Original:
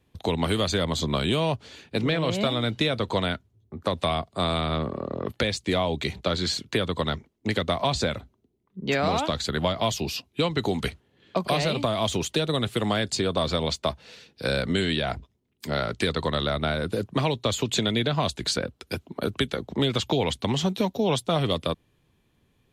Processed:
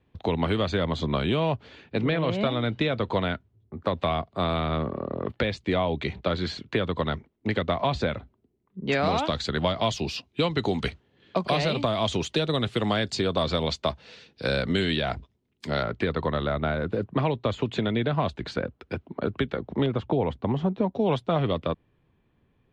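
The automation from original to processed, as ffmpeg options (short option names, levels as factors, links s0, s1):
-af "asetnsamples=n=441:p=0,asendcmd='8.9 lowpass f 5100;15.83 lowpass f 2100;19.86 lowpass f 1200;20.95 lowpass f 2200',lowpass=2800"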